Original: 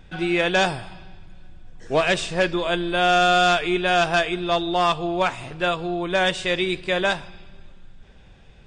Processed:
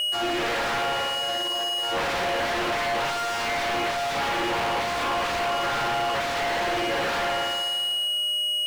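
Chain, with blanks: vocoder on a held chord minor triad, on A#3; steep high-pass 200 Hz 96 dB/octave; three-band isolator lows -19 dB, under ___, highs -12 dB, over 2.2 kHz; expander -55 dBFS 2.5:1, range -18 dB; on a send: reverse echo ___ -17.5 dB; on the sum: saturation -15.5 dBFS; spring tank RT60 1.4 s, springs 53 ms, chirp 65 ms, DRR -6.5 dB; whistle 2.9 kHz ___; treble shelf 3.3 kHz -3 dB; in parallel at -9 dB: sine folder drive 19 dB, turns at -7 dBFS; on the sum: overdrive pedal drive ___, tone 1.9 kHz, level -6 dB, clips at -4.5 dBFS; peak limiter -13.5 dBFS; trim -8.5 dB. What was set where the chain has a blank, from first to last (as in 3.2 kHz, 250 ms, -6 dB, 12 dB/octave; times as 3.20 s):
460 Hz, 1171 ms, -34 dBFS, 37 dB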